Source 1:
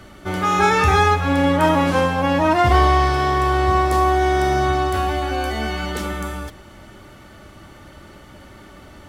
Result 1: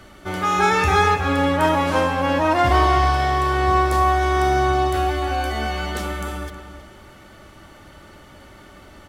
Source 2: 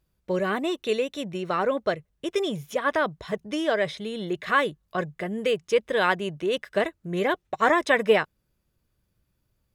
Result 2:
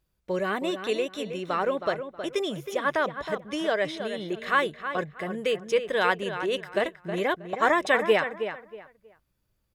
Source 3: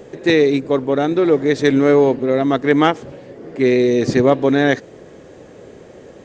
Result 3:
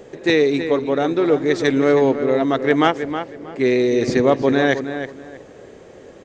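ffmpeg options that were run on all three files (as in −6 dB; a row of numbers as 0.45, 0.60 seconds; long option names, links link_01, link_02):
-filter_complex "[0:a]equalizer=frequency=140:width_type=o:width=2.7:gain=-3.5,asplit=2[link_01][link_02];[link_02]adelay=318,lowpass=frequency=2900:poles=1,volume=-9dB,asplit=2[link_03][link_04];[link_04]adelay=318,lowpass=frequency=2900:poles=1,volume=0.25,asplit=2[link_05][link_06];[link_06]adelay=318,lowpass=frequency=2900:poles=1,volume=0.25[link_07];[link_01][link_03][link_05][link_07]amix=inputs=4:normalize=0,volume=-1dB"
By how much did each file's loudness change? −1.0, −1.5, −2.5 LU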